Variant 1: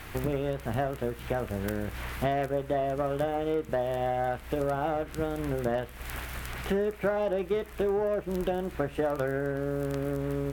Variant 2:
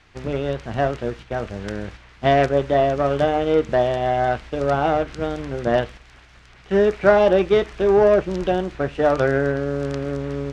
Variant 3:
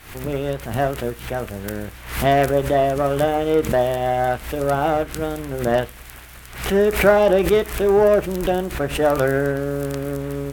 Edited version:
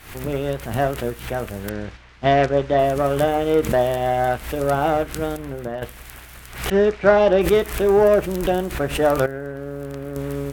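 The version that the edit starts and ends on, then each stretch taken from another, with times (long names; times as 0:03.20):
3
0:01.69–0:02.79: punch in from 2
0:05.37–0:05.82: punch in from 1
0:06.70–0:07.41: punch in from 2
0:09.26–0:10.16: punch in from 1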